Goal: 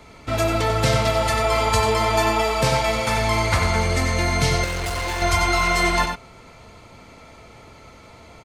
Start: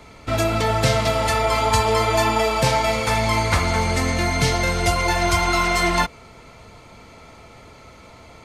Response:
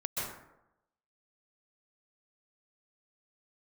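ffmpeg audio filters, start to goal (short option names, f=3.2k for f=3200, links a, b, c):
-filter_complex "[0:a]asplit=2[a][b];[b]adelay=93.29,volume=-6dB,highshelf=f=4k:g=-2.1[c];[a][c]amix=inputs=2:normalize=0,asettb=1/sr,asplit=3[d][e][f];[d]atrim=end=4.644[g];[e]atrim=start=4.64:end=5.22,asetpts=PTS-STARTPTS,afade=t=in:d=0.004:c=qsin,afade=t=out:st=0.576:d=0.004:c=qsin,volume=22dB,asoftclip=hard,volume=-22dB[h];[f]atrim=start=5.216[i];[g][h]acrossfade=d=0.004:c1=hsin:c2=qsin[j];[j][i]acrossfade=d=0.004:c1=qsin:c2=hsin,volume=-1.5dB"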